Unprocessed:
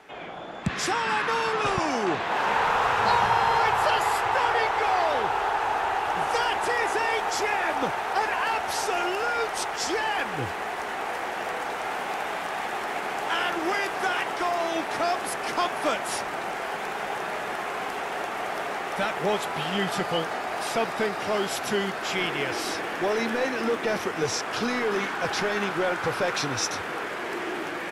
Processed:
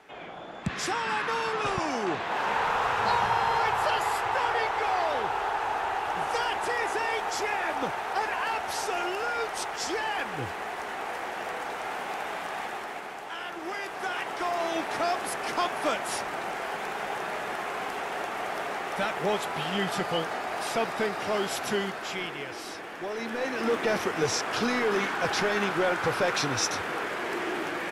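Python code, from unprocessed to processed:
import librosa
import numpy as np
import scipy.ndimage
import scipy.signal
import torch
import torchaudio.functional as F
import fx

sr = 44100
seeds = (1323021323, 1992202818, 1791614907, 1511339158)

y = fx.gain(x, sr, db=fx.line((12.61, -3.5), (13.32, -11.0), (14.66, -2.0), (21.73, -2.0), (22.47, -9.0), (23.1, -9.0), (23.75, 0.0)))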